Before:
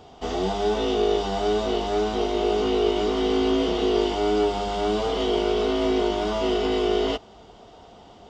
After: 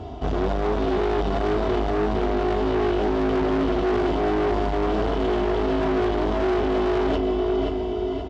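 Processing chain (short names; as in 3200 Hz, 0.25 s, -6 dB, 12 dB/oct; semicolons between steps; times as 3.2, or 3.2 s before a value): RIAA curve playback; comb 3 ms, depth 61%; on a send: feedback echo 0.527 s, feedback 40%, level -9 dB; on the sum: soft clip -21 dBFS, distortion -7 dB; HPF 65 Hz 12 dB/oct; echo 0.743 s -23 dB; reverse; compressor, threshold -25 dBFS, peak gain reduction 5.5 dB; reverse; gain +6.5 dB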